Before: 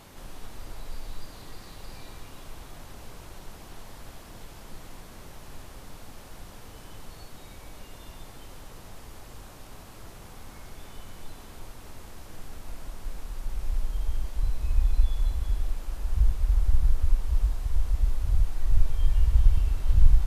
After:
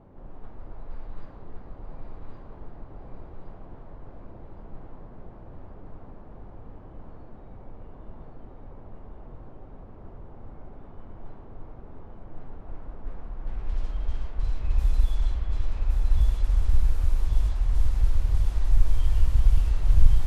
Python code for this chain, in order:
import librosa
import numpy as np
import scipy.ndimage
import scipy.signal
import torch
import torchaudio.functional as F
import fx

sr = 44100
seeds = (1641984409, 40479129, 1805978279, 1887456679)

y = fx.self_delay(x, sr, depth_ms=0.54)
y = fx.env_lowpass(y, sr, base_hz=630.0, full_db=-15.5)
y = fx.echo_feedback(y, sr, ms=1116, feedback_pct=53, wet_db=-3)